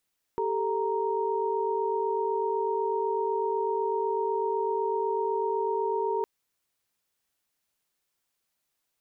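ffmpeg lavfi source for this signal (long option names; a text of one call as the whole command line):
ffmpeg -f lavfi -i "aevalsrc='0.0335*(sin(2*PI*392*t)+sin(2*PI*440*t)+sin(2*PI*932.33*t))':duration=5.86:sample_rate=44100" out.wav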